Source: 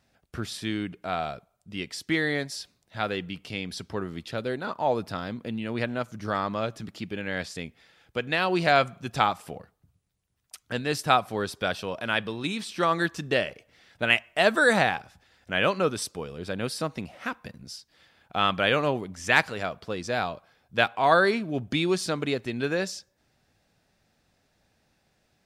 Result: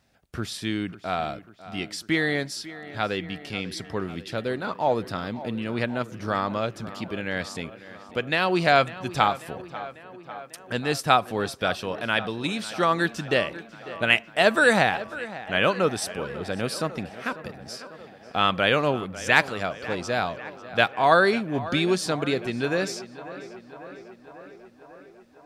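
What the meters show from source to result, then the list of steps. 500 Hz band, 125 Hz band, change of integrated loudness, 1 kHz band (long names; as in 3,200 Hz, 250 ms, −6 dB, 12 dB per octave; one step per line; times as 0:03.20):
+2.0 dB, +2.0 dB, +2.0 dB, +2.0 dB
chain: tape delay 545 ms, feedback 75%, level −15 dB, low-pass 3,200 Hz
level +2 dB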